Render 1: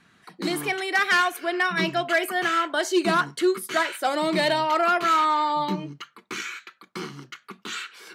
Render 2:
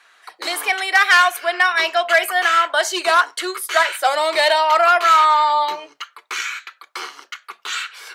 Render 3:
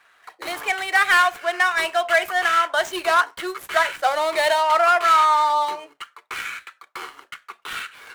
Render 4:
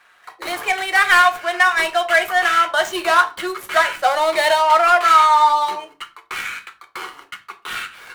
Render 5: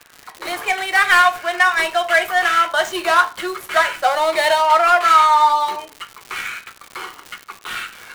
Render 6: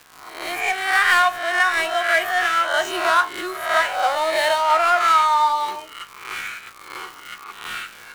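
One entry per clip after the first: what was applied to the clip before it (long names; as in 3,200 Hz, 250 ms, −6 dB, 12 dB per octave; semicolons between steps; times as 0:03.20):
high-pass filter 560 Hz 24 dB per octave; level +8 dB
running median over 9 samples; level −2.5 dB
convolution reverb RT60 0.35 s, pre-delay 6 ms, DRR 6 dB; level +2.5 dB
surface crackle 200 per second −26 dBFS
peak hold with a rise ahead of every peak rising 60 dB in 0.65 s; level −5 dB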